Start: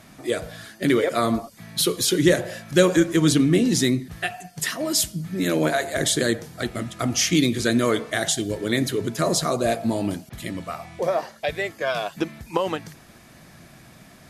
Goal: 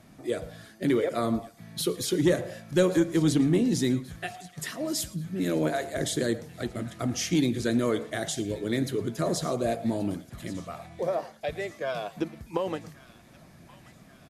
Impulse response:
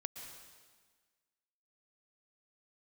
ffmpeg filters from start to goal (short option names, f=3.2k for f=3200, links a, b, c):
-filter_complex "[0:a]acrossover=split=730[a][b];[a]acontrast=55[c];[b]aecho=1:1:1130|2260|3390|4520|5650:0.141|0.0777|0.0427|0.0235|0.0129[d];[c][d]amix=inputs=2:normalize=0[e];[1:a]atrim=start_sample=2205,afade=t=out:st=0.16:d=0.01,atrim=end_sample=7497[f];[e][f]afir=irnorm=-1:irlink=0,volume=-6.5dB"